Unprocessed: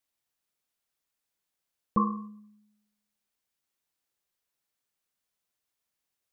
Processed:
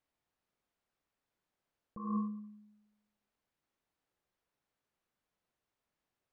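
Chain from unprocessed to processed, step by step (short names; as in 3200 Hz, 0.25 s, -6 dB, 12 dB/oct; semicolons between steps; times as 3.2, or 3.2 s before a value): LPF 1100 Hz 6 dB/oct; negative-ratio compressor -37 dBFS, ratio -1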